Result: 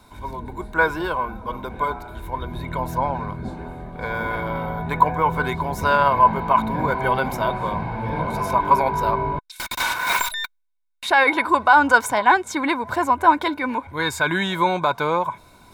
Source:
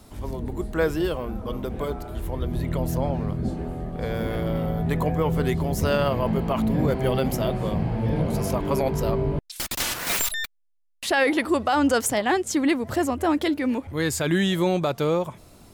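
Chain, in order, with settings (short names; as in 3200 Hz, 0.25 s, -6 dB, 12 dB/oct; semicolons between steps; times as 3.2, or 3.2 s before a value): dynamic EQ 1000 Hz, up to +8 dB, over -39 dBFS, Q 0.97; reverse; upward compressor, threshold -42 dBFS; reverse; small resonant body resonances 1000/1500/2200/3700 Hz, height 17 dB, ringing for 30 ms; gain -4.5 dB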